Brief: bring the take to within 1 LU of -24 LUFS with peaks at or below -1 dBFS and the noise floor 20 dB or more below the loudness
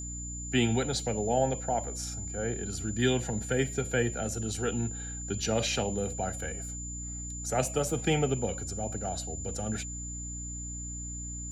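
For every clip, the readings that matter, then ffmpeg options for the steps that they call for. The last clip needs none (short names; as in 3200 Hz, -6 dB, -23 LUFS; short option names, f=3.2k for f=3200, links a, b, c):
hum 60 Hz; harmonics up to 300 Hz; hum level -38 dBFS; steady tone 7100 Hz; tone level -39 dBFS; loudness -31.5 LUFS; peak -12.0 dBFS; loudness target -24.0 LUFS
-> -af "bandreject=f=60:t=h:w=6,bandreject=f=120:t=h:w=6,bandreject=f=180:t=h:w=6,bandreject=f=240:t=h:w=6,bandreject=f=300:t=h:w=6"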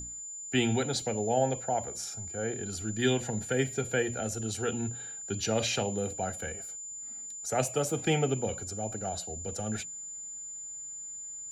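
hum none; steady tone 7100 Hz; tone level -39 dBFS
-> -af "bandreject=f=7.1k:w=30"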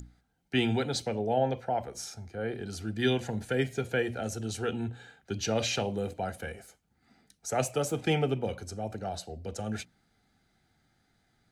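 steady tone none; loudness -32.0 LUFS; peak -13.5 dBFS; loudness target -24.0 LUFS
-> -af "volume=8dB"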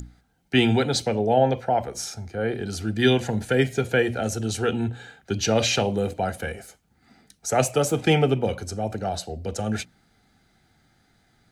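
loudness -24.0 LUFS; peak -5.5 dBFS; noise floor -64 dBFS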